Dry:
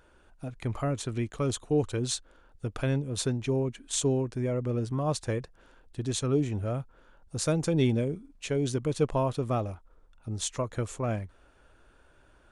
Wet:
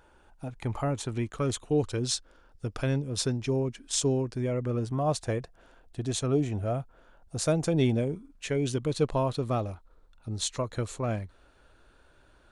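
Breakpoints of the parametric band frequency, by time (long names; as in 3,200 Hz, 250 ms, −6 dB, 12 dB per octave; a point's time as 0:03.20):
parametric band +8.5 dB 0.27 octaves
0:01.18 850 Hz
0:01.91 5,200 Hz
0:04.30 5,200 Hz
0:04.92 690 Hz
0:07.99 690 Hz
0:08.90 4,100 Hz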